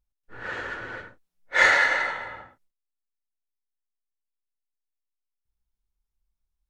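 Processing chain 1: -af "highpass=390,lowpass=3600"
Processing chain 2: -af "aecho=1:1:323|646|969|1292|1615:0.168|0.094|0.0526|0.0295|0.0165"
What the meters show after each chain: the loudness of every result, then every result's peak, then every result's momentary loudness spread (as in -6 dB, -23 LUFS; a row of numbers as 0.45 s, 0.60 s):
-22.5 LUFS, -23.0 LUFS; -5.0 dBFS, -5.5 dBFS; 22 LU, 22 LU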